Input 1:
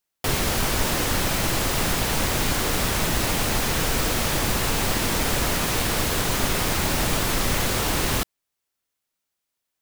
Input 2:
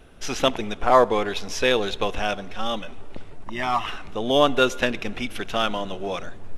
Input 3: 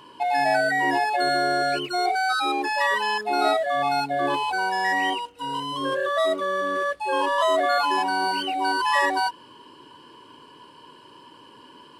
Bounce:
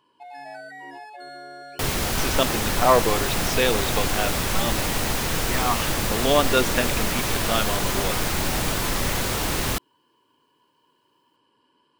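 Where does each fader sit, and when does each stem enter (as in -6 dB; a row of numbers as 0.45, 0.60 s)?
-1.5, -1.5, -18.0 dB; 1.55, 1.95, 0.00 s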